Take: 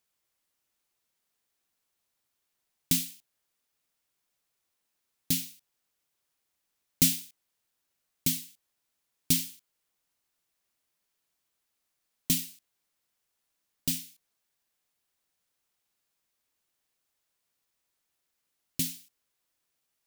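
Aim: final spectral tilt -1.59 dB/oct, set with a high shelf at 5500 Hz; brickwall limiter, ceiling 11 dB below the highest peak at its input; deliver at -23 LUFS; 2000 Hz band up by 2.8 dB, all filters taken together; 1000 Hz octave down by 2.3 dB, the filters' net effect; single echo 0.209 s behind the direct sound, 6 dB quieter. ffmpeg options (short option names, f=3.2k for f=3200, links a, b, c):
-af "equalizer=f=1k:t=o:g=-5,equalizer=f=2k:t=o:g=5,highshelf=f=5.5k:g=-3,alimiter=limit=-20dB:level=0:latency=1,aecho=1:1:209:0.501,volume=13dB"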